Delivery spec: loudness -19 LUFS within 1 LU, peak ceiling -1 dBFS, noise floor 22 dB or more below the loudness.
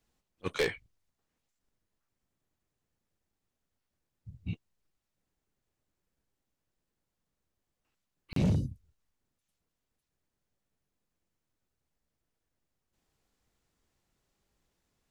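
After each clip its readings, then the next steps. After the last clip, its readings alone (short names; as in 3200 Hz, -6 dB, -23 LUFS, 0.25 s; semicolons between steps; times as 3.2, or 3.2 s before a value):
clipped 0.4%; flat tops at -23.0 dBFS; dropouts 1; longest dropout 33 ms; loudness -34.0 LUFS; peak -23.0 dBFS; loudness target -19.0 LUFS
-> clip repair -23 dBFS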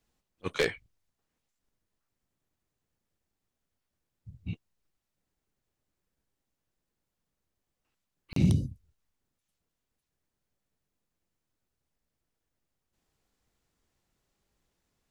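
clipped 0.0%; dropouts 1; longest dropout 33 ms
-> interpolate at 8.33, 33 ms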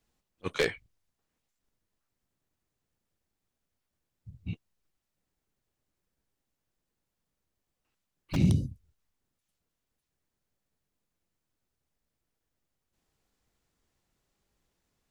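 dropouts 0; loudness -31.0 LUFS; peak -14.0 dBFS; loudness target -19.0 LUFS
-> gain +12 dB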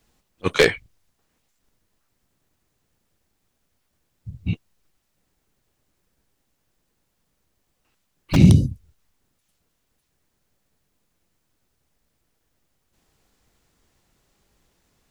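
loudness -19.5 LUFS; peak -2.0 dBFS; noise floor -73 dBFS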